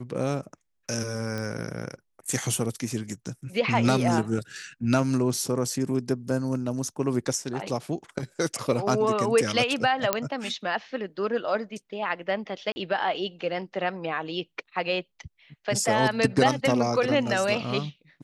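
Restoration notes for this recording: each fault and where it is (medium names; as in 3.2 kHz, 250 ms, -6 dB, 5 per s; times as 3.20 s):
1.38 s: pop -19 dBFS
10.13 s: pop -5 dBFS
12.72–12.76 s: dropout 40 ms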